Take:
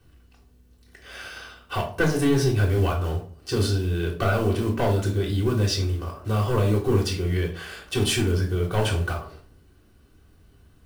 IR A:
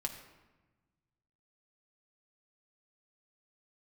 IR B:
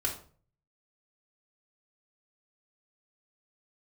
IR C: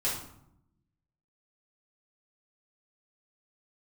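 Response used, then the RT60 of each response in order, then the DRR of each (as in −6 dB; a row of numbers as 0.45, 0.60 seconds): B; 1.2, 0.45, 0.75 seconds; 2.5, −3.0, −8.0 decibels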